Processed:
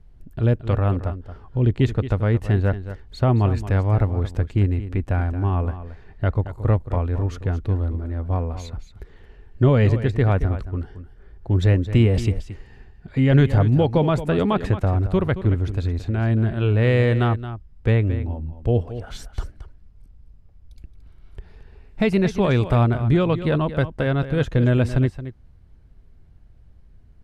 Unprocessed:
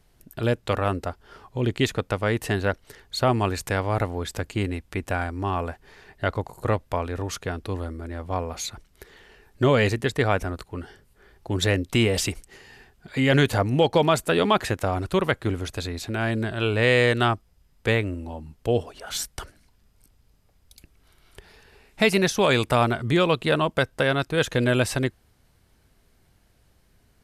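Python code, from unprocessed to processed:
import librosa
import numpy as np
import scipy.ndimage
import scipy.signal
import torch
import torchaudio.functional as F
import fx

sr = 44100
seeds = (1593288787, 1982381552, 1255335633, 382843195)

y = fx.riaa(x, sr, side='playback')
y = y + 10.0 ** (-12.5 / 20.0) * np.pad(y, (int(223 * sr / 1000.0), 0))[:len(y)]
y = y * 10.0 ** (-3.5 / 20.0)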